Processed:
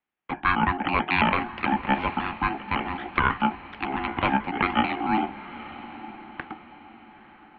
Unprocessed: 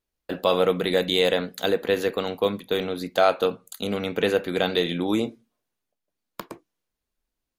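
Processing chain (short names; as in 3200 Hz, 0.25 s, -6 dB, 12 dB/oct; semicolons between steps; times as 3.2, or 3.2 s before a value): trilling pitch shifter -6.5 st, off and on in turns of 0.11 s; HPF 210 Hz 24 dB/oct; bell 430 Hz -10 dB 0.82 oct; ring modulator 880 Hz; diffused feedback echo 0.92 s, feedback 42%, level -15 dB; mistuned SSB -340 Hz 430–3100 Hz; gain +8 dB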